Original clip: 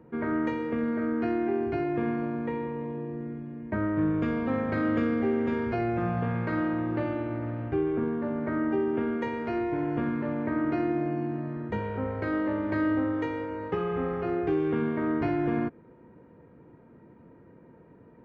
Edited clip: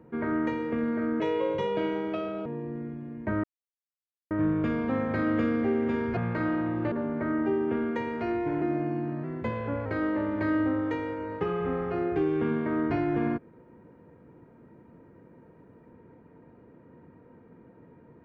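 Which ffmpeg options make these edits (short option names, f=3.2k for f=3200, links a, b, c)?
-filter_complex "[0:a]asplit=9[a][b][c][d][e][f][g][h][i];[a]atrim=end=1.204[j];[b]atrim=start=1.2:end=2.91,asetpts=PTS-STARTPTS,asetrate=59976,aresample=44100,atrim=end_sample=55449,asetpts=PTS-STARTPTS[k];[c]atrim=start=2.906:end=3.89,asetpts=PTS-STARTPTS,afade=t=out:st=0.98:d=0.004:c=hsin,apad=pad_dur=0.87[l];[d]atrim=start=3.89:end=5.752,asetpts=PTS-STARTPTS,afade=t=in:d=0.004:c=hsin[m];[e]atrim=start=6.288:end=7.042[n];[f]atrim=start=8.178:end=9.882[o];[g]atrim=start=10.878:end=11.504[p];[h]atrim=start=11.5:end=12.17,asetpts=PTS-STARTPTS,asetrate=47628,aresample=44100,atrim=end_sample=27358,asetpts=PTS-STARTPTS[q];[i]atrim=start=12.166[r];[j][k]acrossfade=d=0.004:c1=hsin:c2=hsin[s];[l][m]concat=n=2:v=0:a=1[t];[s][t]acrossfade=d=0.004:c1=hsin:c2=hsin[u];[u][n]acrossfade=d=0.004:c1=hsin:c2=hsin[v];[v][o]acrossfade=d=0.004:c1=hsin:c2=hsin[w];[w][p]acrossfade=d=0.004:c1=hsin:c2=hsin[x];[x][q]acrossfade=d=0.004:c1=hsin:c2=hsin[y];[y][r]acrossfade=d=0.004:c1=hsin:c2=hsin"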